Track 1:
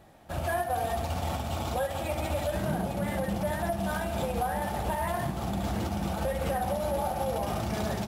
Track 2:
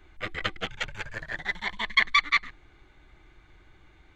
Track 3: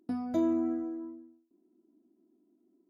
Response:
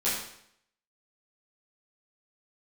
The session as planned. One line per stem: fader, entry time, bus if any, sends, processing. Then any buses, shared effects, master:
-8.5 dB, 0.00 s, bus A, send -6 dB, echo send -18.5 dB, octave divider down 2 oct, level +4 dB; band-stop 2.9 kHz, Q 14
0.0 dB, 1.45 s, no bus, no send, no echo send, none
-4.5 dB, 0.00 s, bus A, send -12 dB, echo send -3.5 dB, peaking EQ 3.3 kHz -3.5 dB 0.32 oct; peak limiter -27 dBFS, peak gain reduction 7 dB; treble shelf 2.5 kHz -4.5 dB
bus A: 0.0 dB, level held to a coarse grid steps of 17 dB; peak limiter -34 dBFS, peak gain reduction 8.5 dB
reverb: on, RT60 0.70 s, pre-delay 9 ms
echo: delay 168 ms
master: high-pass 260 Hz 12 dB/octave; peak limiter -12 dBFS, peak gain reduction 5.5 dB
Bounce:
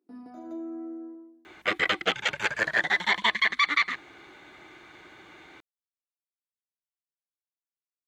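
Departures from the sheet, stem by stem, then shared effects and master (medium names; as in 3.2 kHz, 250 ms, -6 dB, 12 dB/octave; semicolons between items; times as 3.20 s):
stem 1: muted; stem 2 0.0 dB -> +11.5 dB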